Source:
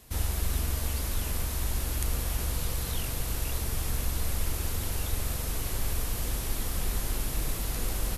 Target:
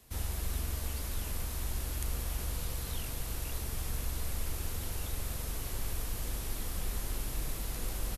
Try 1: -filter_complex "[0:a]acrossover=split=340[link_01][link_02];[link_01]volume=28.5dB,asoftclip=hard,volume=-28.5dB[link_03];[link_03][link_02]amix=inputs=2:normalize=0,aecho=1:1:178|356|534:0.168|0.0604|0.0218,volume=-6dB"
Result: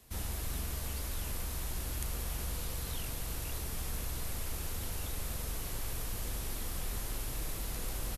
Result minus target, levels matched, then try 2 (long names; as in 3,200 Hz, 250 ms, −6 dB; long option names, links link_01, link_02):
gain into a clipping stage and back: distortion +16 dB
-filter_complex "[0:a]acrossover=split=340[link_01][link_02];[link_01]volume=21.5dB,asoftclip=hard,volume=-21.5dB[link_03];[link_03][link_02]amix=inputs=2:normalize=0,aecho=1:1:178|356|534:0.168|0.0604|0.0218,volume=-6dB"